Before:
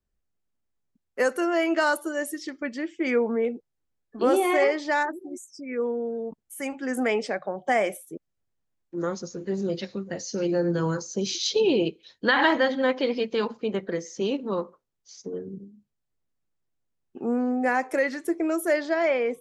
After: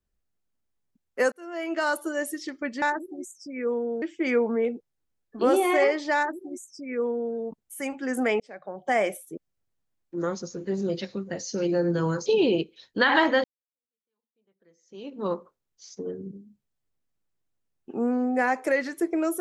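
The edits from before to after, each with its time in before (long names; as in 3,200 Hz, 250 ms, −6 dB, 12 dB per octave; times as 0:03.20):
0:01.32–0:02.08: fade in
0:04.95–0:06.15: duplicate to 0:02.82
0:07.20–0:07.81: fade in
0:11.06–0:11.53: remove
0:12.71–0:14.54: fade in exponential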